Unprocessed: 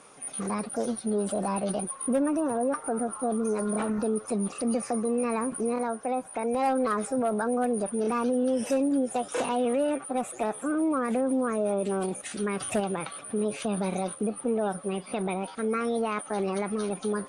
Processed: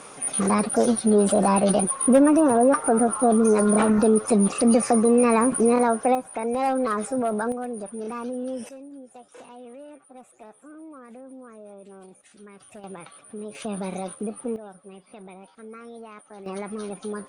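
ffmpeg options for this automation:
-af "asetnsamples=n=441:p=0,asendcmd='6.15 volume volume 2dB;7.52 volume volume -5dB;8.69 volume volume -17dB;12.84 volume volume -8dB;13.55 volume volume -1.5dB;14.56 volume volume -13.5dB;16.46 volume volume -3dB',volume=9.5dB"

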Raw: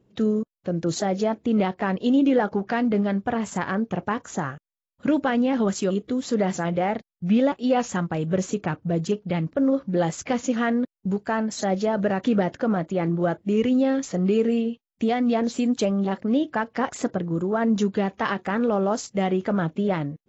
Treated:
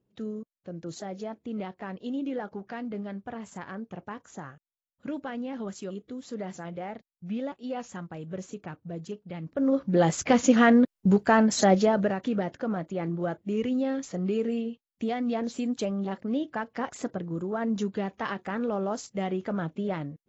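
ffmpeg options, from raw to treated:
-af "volume=4.5dB,afade=t=in:st=9.4:d=0.35:silence=0.281838,afade=t=in:st=9.75:d=0.73:silence=0.473151,afade=t=out:st=11.64:d=0.54:silence=0.266073"

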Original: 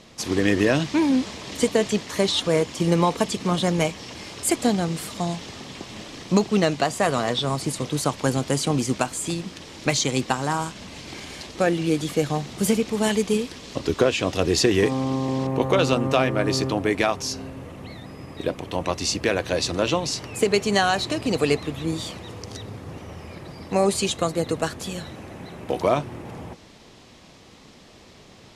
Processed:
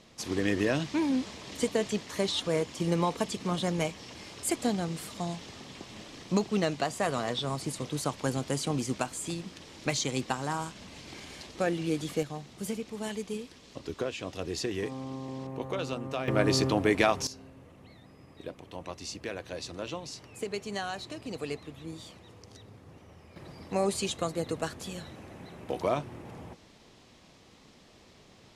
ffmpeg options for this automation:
-af "asetnsamples=n=441:p=0,asendcmd='12.23 volume volume -14dB;16.28 volume volume -2.5dB;17.27 volume volume -15dB;23.36 volume volume -8dB',volume=-8dB"

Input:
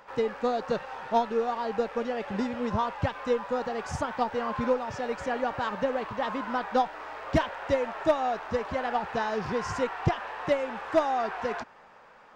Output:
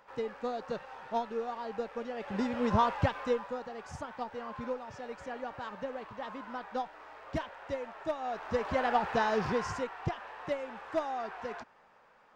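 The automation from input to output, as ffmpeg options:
-af "volume=13dB,afade=t=in:st=2.13:d=0.7:silence=0.316228,afade=t=out:st=2.83:d=0.78:silence=0.237137,afade=t=in:st=8.19:d=0.6:silence=0.281838,afade=t=out:st=9.42:d=0.45:silence=0.354813"

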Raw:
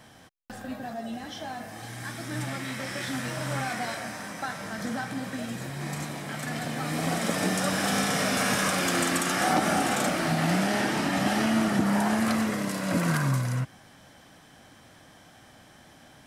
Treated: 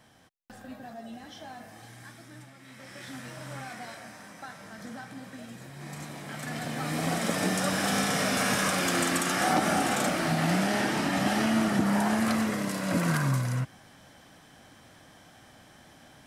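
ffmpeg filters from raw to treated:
-af "volume=11.5dB,afade=t=out:st=1.69:d=0.85:silence=0.237137,afade=t=in:st=2.54:d=0.56:silence=0.316228,afade=t=in:st=5.7:d=1.17:silence=0.375837"

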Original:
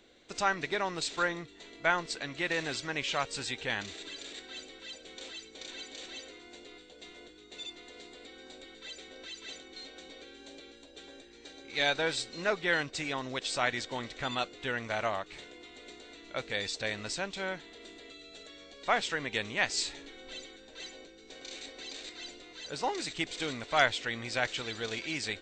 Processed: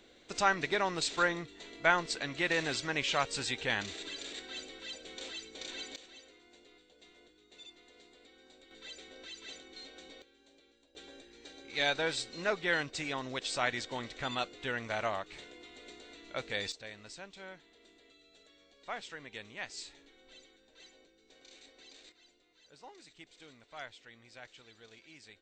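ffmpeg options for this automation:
-af "asetnsamples=n=441:p=0,asendcmd='5.96 volume volume -10dB;8.71 volume volume -3dB;10.22 volume volume -14.5dB;10.95 volume volume -2dB;16.72 volume volume -12.5dB;22.12 volume volume -20dB',volume=1dB"

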